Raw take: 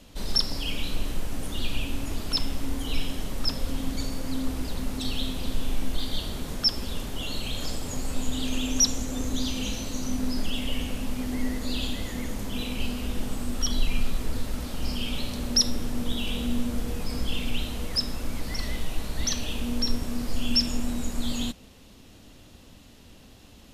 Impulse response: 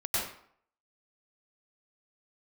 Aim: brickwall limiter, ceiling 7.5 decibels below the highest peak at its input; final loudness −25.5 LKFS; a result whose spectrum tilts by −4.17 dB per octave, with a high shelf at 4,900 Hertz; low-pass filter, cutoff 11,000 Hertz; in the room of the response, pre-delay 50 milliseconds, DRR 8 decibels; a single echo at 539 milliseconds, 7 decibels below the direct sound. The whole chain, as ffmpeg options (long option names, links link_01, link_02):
-filter_complex "[0:a]lowpass=11000,highshelf=frequency=4900:gain=-3.5,alimiter=limit=-18.5dB:level=0:latency=1,aecho=1:1:539:0.447,asplit=2[link_01][link_02];[1:a]atrim=start_sample=2205,adelay=50[link_03];[link_02][link_03]afir=irnorm=-1:irlink=0,volume=-16dB[link_04];[link_01][link_04]amix=inputs=2:normalize=0,volume=6dB"